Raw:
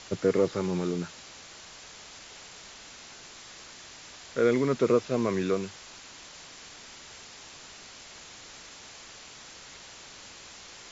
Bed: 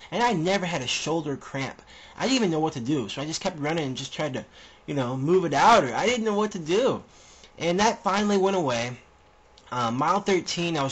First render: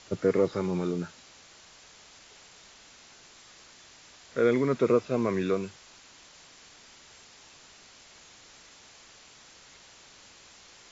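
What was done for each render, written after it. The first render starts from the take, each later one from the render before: noise print and reduce 6 dB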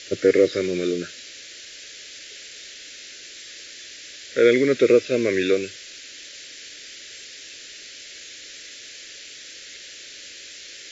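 EQ curve 110 Hz 0 dB, 200 Hz -4 dB, 290 Hz +8 dB, 580 Hz +8 dB, 890 Hz -20 dB, 1700 Hz +13 dB, 3800 Hz +15 dB, 7200 Hz +12 dB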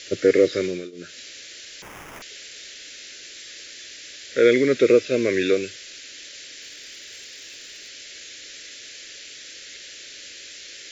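0.64–1.19 dip -22.5 dB, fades 0.27 s; 1.82–2.22 sample-rate reducer 4200 Hz; 6.62–7.89 hard clip -34 dBFS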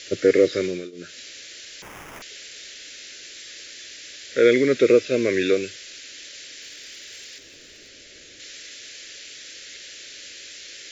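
7.38–8.4 tilt shelf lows +6.5 dB, about 710 Hz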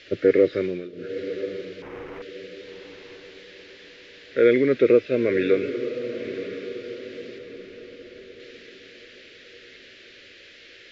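air absorption 340 m; diffused feedback echo 0.995 s, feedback 42%, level -10.5 dB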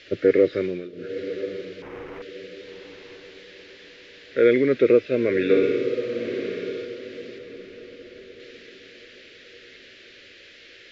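5.44–6.85 flutter echo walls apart 10.2 m, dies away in 1 s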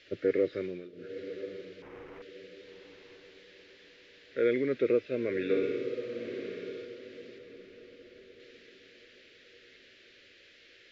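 gain -10 dB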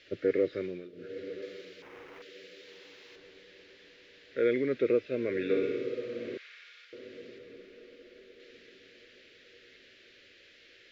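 1.42–3.16 tilt +2.5 dB/oct; 6.37–6.93 HPF 1300 Hz 24 dB/oct; 7.6–8.5 bell 110 Hz -9.5 dB 1.1 oct

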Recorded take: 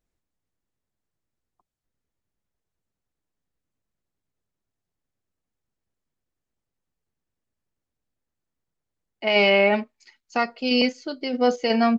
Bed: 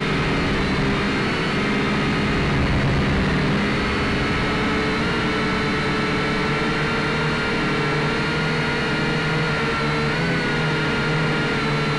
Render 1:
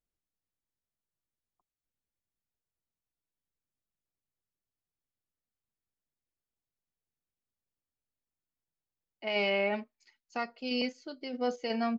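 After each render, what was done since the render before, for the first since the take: gain -11.5 dB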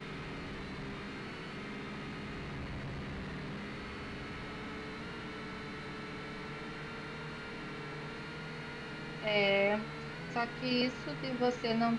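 add bed -22 dB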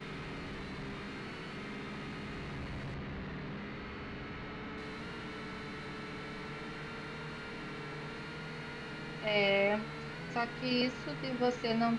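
2.94–4.78 air absorption 110 m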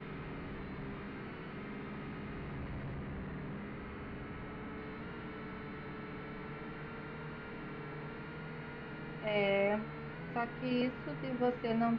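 air absorption 440 m

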